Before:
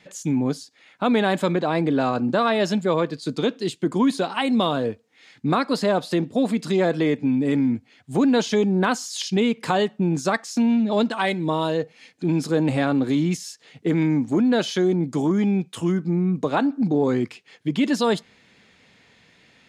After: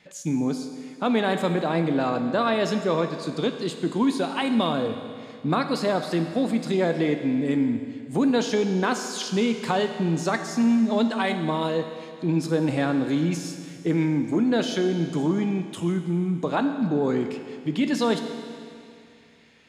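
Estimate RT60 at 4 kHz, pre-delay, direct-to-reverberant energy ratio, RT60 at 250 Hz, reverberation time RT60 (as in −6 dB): 2.3 s, 12 ms, 6.5 dB, 2.4 s, 2.4 s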